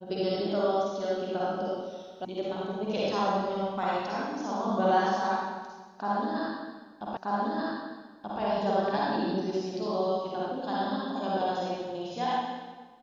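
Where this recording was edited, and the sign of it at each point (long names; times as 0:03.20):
0:02.25: cut off before it has died away
0:07.17: the same again, the last 1.23 s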